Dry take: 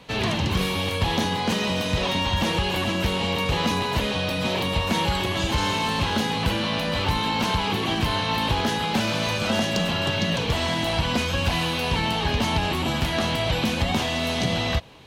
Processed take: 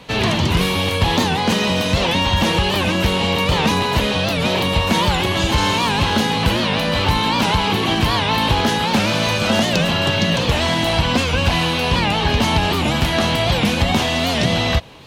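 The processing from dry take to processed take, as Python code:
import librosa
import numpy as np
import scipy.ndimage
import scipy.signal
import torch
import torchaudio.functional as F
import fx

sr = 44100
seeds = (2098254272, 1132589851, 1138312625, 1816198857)

y = fx.high_shelf(x, sr, hz=11000.0, db=-7.0, at=(11.02, 12.3))
y = fx.record_warp(y, sr, rpm=78.0, depth_cents=160.0)
y = y * 10.0 ** (6.5 / 20.0)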